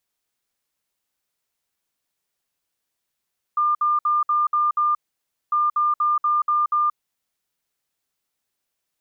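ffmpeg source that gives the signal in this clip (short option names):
-f lavfi -i "aevalsrc='0.15*sin(2*PI*1200*t)*clip(min(mod(mod(t,1.95),0.24),0.18-mod(mod(t,1.95),0.24))/0.005,0,1)*lt(mod(t,1.95),1.44)':d=3.9:s=44100"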